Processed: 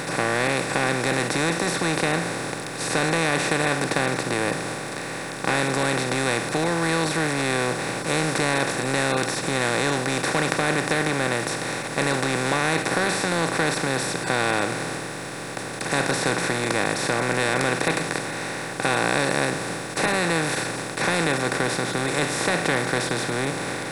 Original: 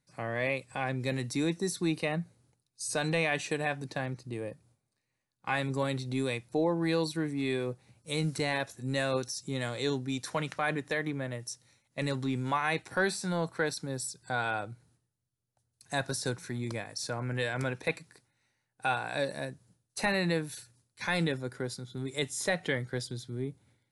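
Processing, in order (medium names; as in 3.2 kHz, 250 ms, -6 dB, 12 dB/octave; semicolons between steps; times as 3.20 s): spectral levelling over time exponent 0.2; bit crusher 9-bit; trim -1.5 dB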